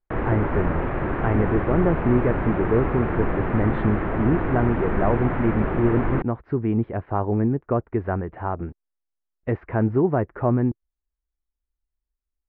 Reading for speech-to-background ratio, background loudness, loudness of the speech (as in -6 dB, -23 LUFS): 2.0 dB, -26.0 LUFS, -24.0 LUFS